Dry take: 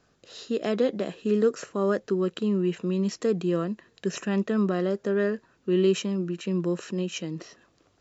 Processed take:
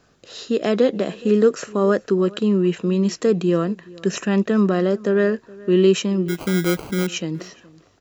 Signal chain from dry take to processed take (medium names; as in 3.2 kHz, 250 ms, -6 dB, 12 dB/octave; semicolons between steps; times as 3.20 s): 6.28–7.07 s: sample-rate reducer 1.8 kHz, jitter 0%; echo from a far wall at 72 m, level -22 dB; trim +7 dB